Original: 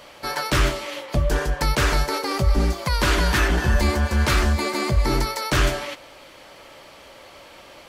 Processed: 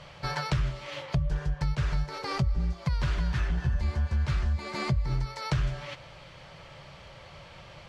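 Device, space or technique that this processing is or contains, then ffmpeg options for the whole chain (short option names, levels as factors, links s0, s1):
jukebox: -af "lowpass=5500,lowshelf=f=200:t=q:w=3:g=9.5,acompressor=threshold=0.0708:ratio=4,volume=0.631"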